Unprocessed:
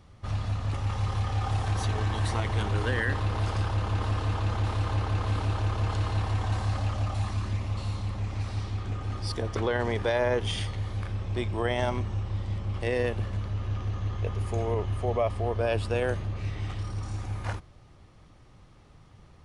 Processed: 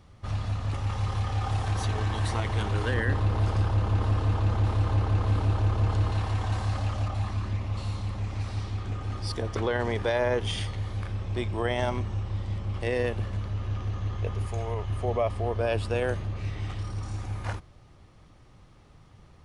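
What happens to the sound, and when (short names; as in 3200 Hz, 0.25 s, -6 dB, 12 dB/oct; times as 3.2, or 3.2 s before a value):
2.94–6.12 tilt shelf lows +3.5 dB, about 850 Hz
7.08–7.74 high shelf 5500 Hz -8.5 dB
14.47–14.9 bell 300 Hz -8.5 dB 1.6 oct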